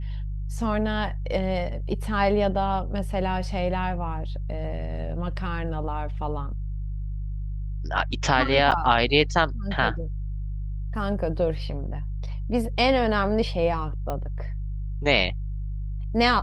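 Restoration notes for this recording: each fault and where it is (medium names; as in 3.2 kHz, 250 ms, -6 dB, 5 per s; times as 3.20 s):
hum 50 Hz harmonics 3 -30 dBFS
8.71–8.72 s: dropout 7.9 ms
14.10 s: pop -17 dBFS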